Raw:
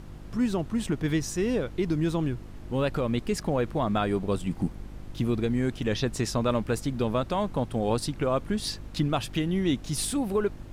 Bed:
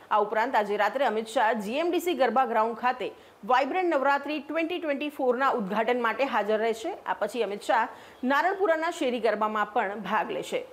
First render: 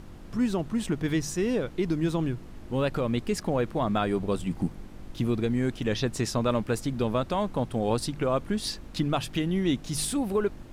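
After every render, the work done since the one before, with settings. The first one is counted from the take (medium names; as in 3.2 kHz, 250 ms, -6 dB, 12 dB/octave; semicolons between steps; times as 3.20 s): de-hum 50 Hz, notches 3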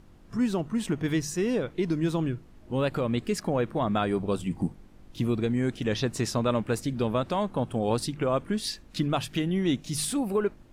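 noise print and reduce 9 dB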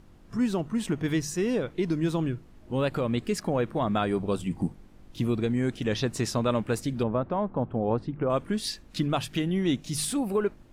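7.03–8.30 s: low-pass 1.3 kHz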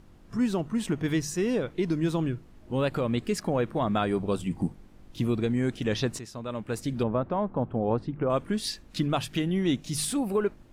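6.19–6.92 s: fade in quadratic, from -13.5 dB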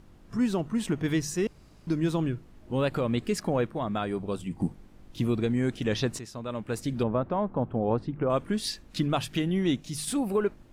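1.47–1.87 s: room tone; 3.67–4.60 s: gain -4 dB; 9.67–10.07 s: fade out, to -6.5 dB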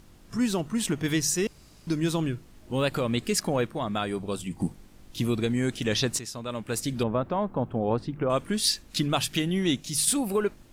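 treble shelf 2.9 kHz +11.5 dB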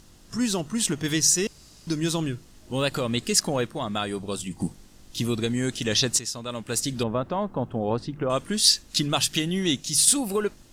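peaking EQ 6.2 kHz +8 dB 1.8 oct; band-stop 2.3 kHz, Q 16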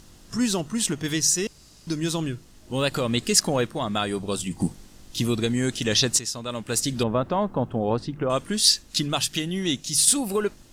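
gain riding within 4 dB 2 s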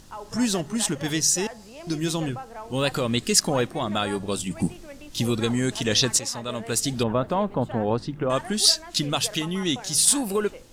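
add bed -14.5 dB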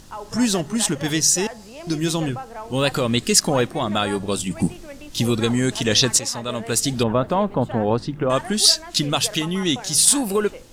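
trim +4 dB; peak limiter -2 dBFS, peak gain reduction 2 dB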